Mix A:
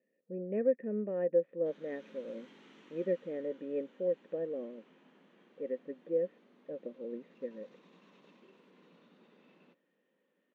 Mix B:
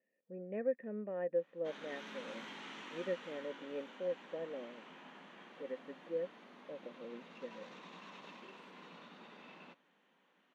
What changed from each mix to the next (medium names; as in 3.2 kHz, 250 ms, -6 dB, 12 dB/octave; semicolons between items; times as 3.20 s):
background +12.0 dB; master: add resonant low shelf 600 Hz -6.5 dB, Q 1.5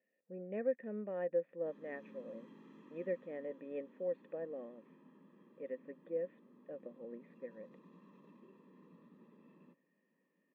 background: add boxcar filter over 60 samples; master: remove low-pass 4.7 kHz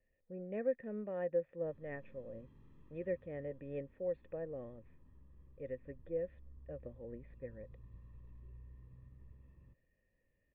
background -11.0 dB; master: remove brick-wall FIR high-pass 170 Hz